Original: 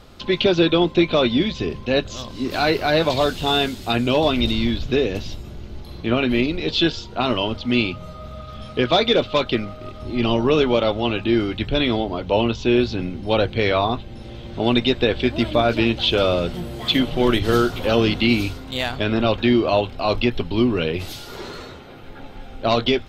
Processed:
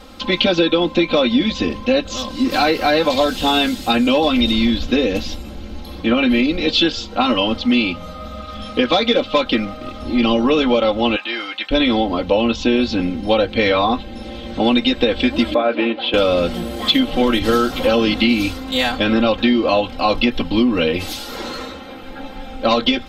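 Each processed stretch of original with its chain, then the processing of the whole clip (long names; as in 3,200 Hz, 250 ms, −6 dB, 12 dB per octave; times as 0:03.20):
0:11.16–0:11.71: high-pass filter 940 Hz + high-shelf EQ 6,500 Hz −7 dB
0:15.54–0:16.14: high-pass filter 350 Hz + high-frequency loss of the air 430 metres
whole clip: low-shelf EQ 89 Hz −7 dB; comb filter 3.8 ms, depth 95%; downward compressor, threshold −16 dBFS; level +4.5 dB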